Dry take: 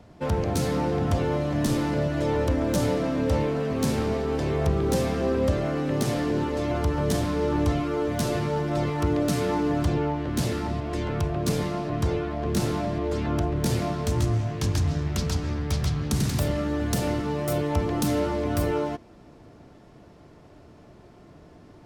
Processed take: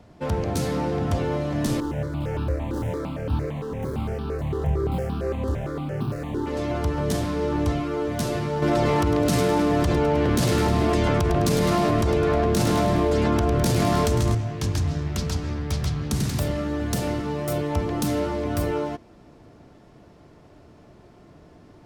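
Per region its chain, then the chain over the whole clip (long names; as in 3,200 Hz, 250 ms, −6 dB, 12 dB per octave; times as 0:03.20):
0:01.80–0:06.47: running median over 25 samples + double-tracking delay 28 ms −5.5 dB + step-sequenced phaser 8.8 Hz 630–2,000 Hz
0:08.62–0:14.35: hum removal 48.48 Hz, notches 5 + repeating echo 104 ms, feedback 53%, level −8.5 dB + envelope flattener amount 100%
whole clip: no processing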